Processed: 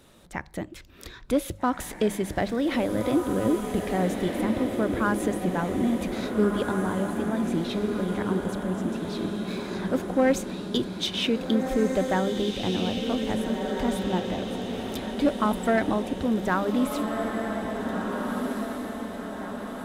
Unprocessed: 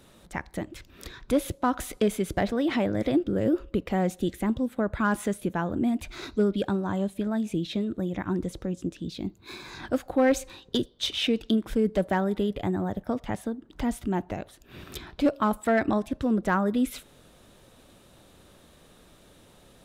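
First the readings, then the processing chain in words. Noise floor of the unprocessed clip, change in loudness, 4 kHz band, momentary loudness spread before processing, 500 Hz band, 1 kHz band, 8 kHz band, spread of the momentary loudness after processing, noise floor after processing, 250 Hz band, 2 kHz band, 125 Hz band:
-56 dBFS, +1.0 dB, +2.0 dB, 13 LU, +2.0 dB, +2.0 dB, +2.0 dB, 8 LU, -44 dBFS, +1.5 dB, +2.0 dB, +1.0 dB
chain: notches 50/100/150/200 Hz; diffused feedback echo 1.688 s, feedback 54%, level -4 dB

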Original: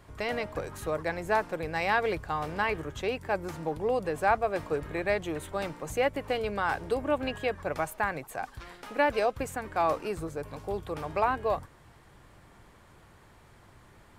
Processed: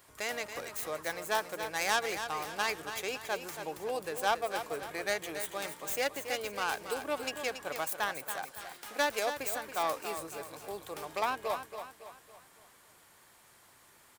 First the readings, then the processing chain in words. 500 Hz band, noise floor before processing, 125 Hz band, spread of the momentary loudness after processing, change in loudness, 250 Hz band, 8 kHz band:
-6.5 dB, -56 dBFS, -15.0 dB, 11 LU, -4.0 dB, -9.5 dB, +8.0 dB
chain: tracing distortion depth 0.13 ms; RIAA curve recording; feedback echo 0.279 s, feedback 44%, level -9 dB; gain -5 dB

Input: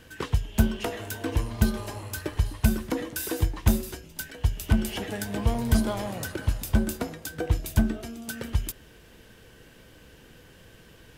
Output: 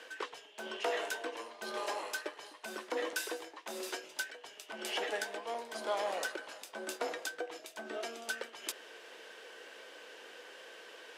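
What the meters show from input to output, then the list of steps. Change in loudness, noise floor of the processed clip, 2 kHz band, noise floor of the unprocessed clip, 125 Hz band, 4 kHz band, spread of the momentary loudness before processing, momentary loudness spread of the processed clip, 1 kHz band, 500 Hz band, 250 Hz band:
-11.0 dB, -56 dBFS, -2.0 dB, -53 dBFS, under -40 dB, -3.0 dB, 10 LU, 15 LU, -2.5 dB, -4.0 dB, -21.5 dB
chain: air absorption 60 m; reverse; compressor 4:1, threshold -34 dBFS, peak gain reduction 17 dB; reverse; HPF 440 Hz 24 dB/oct; gain +5 dB

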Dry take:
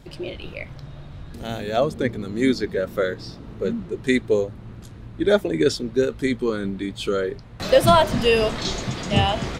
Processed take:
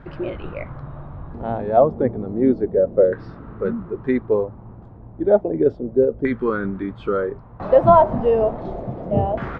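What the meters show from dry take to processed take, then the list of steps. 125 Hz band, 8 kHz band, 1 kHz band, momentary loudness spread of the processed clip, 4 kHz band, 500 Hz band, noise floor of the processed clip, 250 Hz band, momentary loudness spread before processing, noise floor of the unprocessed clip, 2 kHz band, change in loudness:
-0.5 dB, under -35 dB, +3.5 dB, 16 LU, under -20 dB, +3.5 dB, -41 dBFS, +1.0 dB, 19 LU, -41 dBFS, -6.5 dB, +2.0 dB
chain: vocal rider within 5 dB 2 s; LFO low-pass saw down 0.32 Hz 560–1500 Hz; gain -1 dB

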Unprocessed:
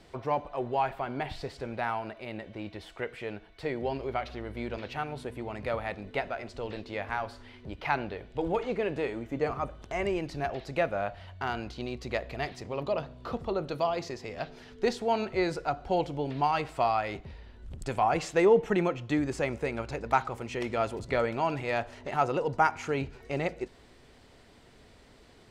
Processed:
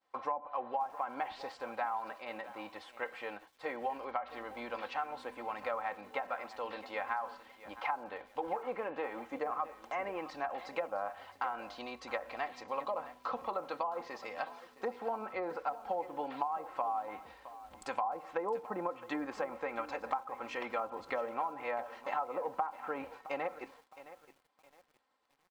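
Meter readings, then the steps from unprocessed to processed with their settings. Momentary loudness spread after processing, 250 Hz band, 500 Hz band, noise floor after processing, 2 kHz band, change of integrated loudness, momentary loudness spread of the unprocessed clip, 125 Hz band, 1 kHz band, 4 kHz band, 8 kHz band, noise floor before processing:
8 LU, -12.5 dB, -9.0 dB, -69 dBFS, -6.5 dB, -7.5 dB, 11 LU, -24.5 dB, -4.5 dB, -9.5 dB, under -10 dB, -56 dBFS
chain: expander -43 dBFS; HPF 630 Hz 6 dB/oct; treble ducked by the level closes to 830 Hz, closed at -27.5 dBFS; bell 1000 Hz +13.5 dB 1.3 oct; comb 3.8 ms, depth 62%; compressor 6:1, threshold -26 dBFS, peak gain reduction 14 dB; lo-fi delay 0.665 s, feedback 35%, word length 8-bit, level -15 dB; gain -6 dB

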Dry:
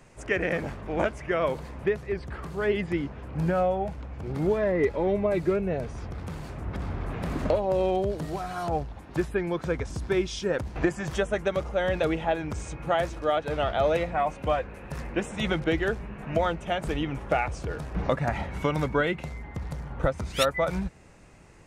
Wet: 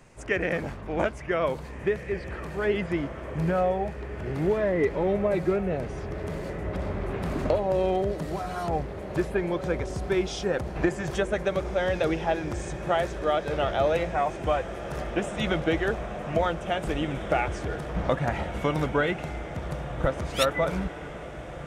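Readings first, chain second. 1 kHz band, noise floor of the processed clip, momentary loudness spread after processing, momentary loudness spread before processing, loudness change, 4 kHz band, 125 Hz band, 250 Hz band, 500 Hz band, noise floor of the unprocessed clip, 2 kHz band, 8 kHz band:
+0.5 dB, -39 dBFS, 9 LU, 10 LU, +0.5 dB, +0.5 dB, +0.5 dB, +0.5 dB, +0.5 dB, -45 dBFS, +0.5 dB, +0.5 dB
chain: diffused feedback echo 1.815 s, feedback 68%, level -11.5 dB

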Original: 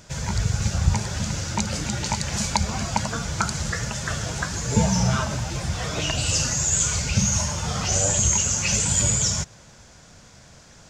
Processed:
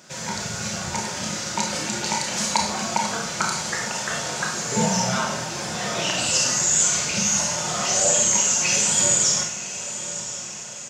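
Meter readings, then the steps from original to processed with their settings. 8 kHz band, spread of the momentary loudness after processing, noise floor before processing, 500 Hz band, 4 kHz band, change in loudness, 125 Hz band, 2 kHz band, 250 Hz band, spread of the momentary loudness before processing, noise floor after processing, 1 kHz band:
+3.5 dB, 11 LU, -49 dBFS, +3.5 dB, +3.5 dB, +1.5 dB, -10.0 dB, +3.5 dB, -1.5 dB, 9 LU, -34 dBFS, +3.5 dB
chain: HPF 250 Hz 12 dB/oct; comb 5.5 ms, depth 31%; on a send: diffused feedback echo 1.044 s, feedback 51%, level -12 dB; on the sum: Schroeder reverb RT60 0.5 s, combs from 25 ms, DRR 0.5 dB

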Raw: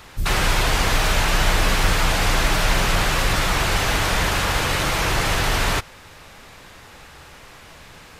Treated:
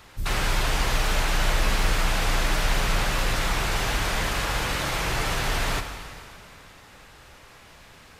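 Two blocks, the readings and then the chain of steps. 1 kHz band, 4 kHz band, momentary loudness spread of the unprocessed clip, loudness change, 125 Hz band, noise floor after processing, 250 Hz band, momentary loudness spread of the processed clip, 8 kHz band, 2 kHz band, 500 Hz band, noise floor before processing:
-5.5 dB, -5.5 dB, 1 LU, -5.5 dB, -5.5 dB, -50 dBFS, -5.5 dB, 5 LU, -5.5 dB, -5.5 dB, -5.5 dB, -44 dBFS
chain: plate-style reverb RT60 2.6 s, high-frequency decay 0.95×, DRR 6.5 dB; gain -6.5 dB

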